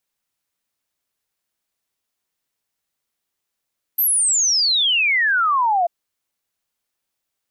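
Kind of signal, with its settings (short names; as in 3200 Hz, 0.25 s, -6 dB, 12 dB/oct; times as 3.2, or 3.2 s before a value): log sweep 13000 Hz -> 670 Hz 1.89 s -14.5 dBFS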